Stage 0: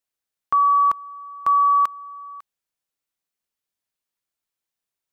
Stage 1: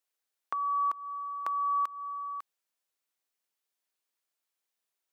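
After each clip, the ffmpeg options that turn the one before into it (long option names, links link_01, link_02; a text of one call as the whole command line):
ffmpeg -i in.wav -af "highpass=310,acompressor=threshold=-26dB:ratio=12,alimiter=limit=-19dB:level=0:latency=1:release=331" out.wav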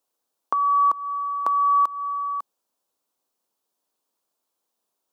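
ffmpeg -i in.wav -af "equalizer=frequency=250:width_type=o:width=1:gain=8,equalizer=frequency=500:width_type=o:width=1:gain=5,equalizer=frequency=1000:width_type=o:width=1:gain=7,equalizer=frequency=2000:width_type=o:width=1:gain=-10,volume=6dB" out.wav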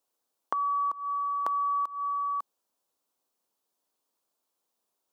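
ffmpeg -i in.wav -af "acompressor=threshold=-25dB:ratio=6,volume=-2dB" out.wav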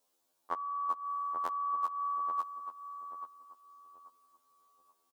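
ffmpeg -i in.wav -filter_complex "[0:a]alimiter=limit=-19.5dB:level=0:latency=1:release=441,asplit=2[link_01][link_02];[link_02]adelay=834,lowpass=frequency=900:poles=1,volume=-6dB,asplit=2[link_03][link_04];[link_04]adelay=834,lowpass=frequency=900:poles=1,volume=0.4,asplit=2[link_05][link_06];[link_06]adelay=834,lowpass=frequency=900:poles=1,volume=0.4,asplit=2[link_07][link_08];[link_08]adelay=834,lowpass=frequency=900:poles=1,volume=0.4,asplit=2[link_09][link_10];[link_10]adelay=834,lowpass=frequency=900:poles=1,volume=0.4[link_11];[link_03][link_05][link_07][link_09][link_11]amix=inputs=5:normalize=0[link_12];[link_01][link_12]amix=inputs=2:normalize=0,afftfilt=real='re*2*eq(mod(b,4),0)':imag='im*2*eq(mod(b,4),0)':win_size=2048:overlap=0.75,volume=6.5dB" out.wav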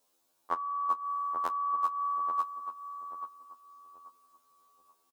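ffmpeg -i in.wav -filter_complex "[0:a]asplit=2[link_01][link_02];[link_02]adelay=24,volume=-13.5dB[link_03];[link_01][link_03]amix=inputs=2:normalize=0,volume=3.5dB" out.wav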